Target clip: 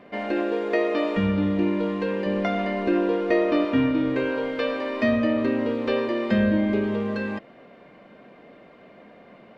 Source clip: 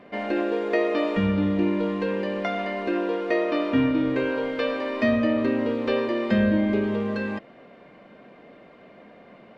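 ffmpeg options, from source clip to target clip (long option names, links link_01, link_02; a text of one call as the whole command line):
ffmpeg -i in.wav -filter_complex "[0:a]asettb=1/sr,asplit=3[link_01][link_02][link_03];[link_01]atrim=end=2.264[link_04];[link_02]atrim=start=2.26:end=3.65,asetpts=PTS-STARTPTS,afade=type=in:duration=0.004:curve=qsin,afade=type=out:start_time=1.386:duration=0.004:curve=qsin,lowshelf=frequency=270:gain=10[link_05];[link_03]atrim=start=3.646[link_06];[link_04][link_05]acrossfade=duration=0.004:curve1=hsin:curve2=qsin[link_07];[link_07][link_06]acrossfade=duration=0.004:curve1=qsin:curve2=hsin" out.wav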